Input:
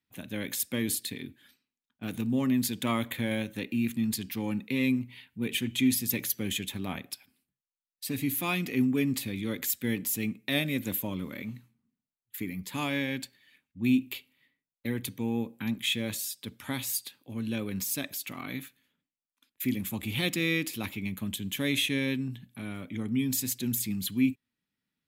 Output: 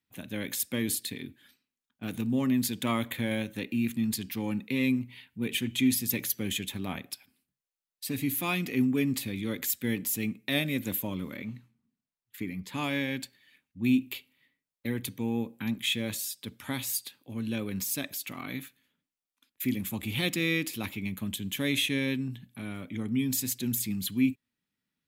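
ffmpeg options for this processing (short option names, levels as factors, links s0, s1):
-filter_complex "[0:a]asettb=1/sr,asplit=3[s0][s1][s2];[s0]atrim=end=11.364[s3];[s1]atrim=start=11.36:end=12.84,asetpts=PTS-STARTPTS,afade=t=in:d=0.004:c=qsin,afade=t=out:st=1.476:d=0.004:c=qsin,highshelf=f=8400:g=-11[s4];[s2]atrim=start=12.836[s5];[s3][s4]acrossfade=d=0.004:c1=hsin:c2=qsin[s6];[s6][s5]acrossfade=d=0.004:c1=qsin:c2=hsin"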